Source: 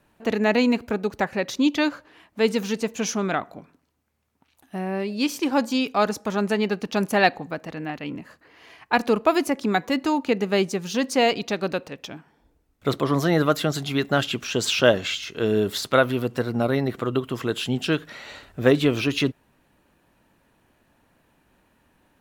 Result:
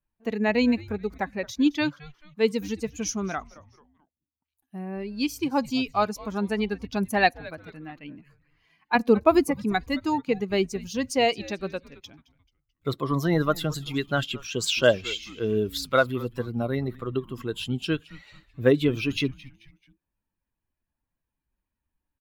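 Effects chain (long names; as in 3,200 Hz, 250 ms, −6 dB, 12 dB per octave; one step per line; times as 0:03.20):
spectral dynamics exaggerated over time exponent 1.5
0:08.95–0:09.51: low-shelf EQ 390 Hz +8 dB
echo with shifted repeats 218 ms, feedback 42%, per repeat −150 Hz, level −20 dB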